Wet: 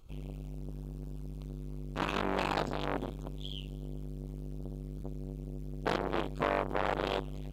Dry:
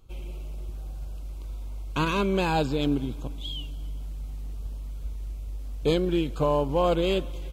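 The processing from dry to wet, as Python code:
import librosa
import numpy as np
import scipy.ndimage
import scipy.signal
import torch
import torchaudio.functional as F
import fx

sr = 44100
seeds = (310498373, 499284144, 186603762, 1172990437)

y = fx.transformer_sat(x, sr, knee_hz=1300.0)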